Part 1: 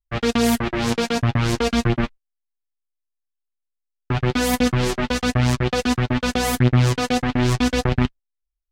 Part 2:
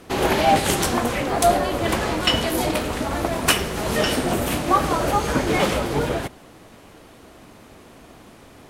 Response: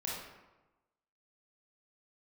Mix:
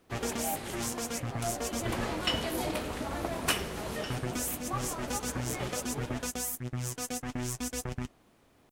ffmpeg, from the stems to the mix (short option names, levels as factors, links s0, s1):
-filter_complex "[0:a]aexciter=amount=8.4:drive=6.3:freq=5900,acompressor=threshold=0.0794:ratio=16,volume=0.355[s0];[1:a]volume=0.299,afade=t=in:st=1.56:d=0.53:silence=0.354813,afade=t=out:st=3.73:d=0.37:silence=0.421697[s1];[s0][s1]amix=inputs=2:normalize=0"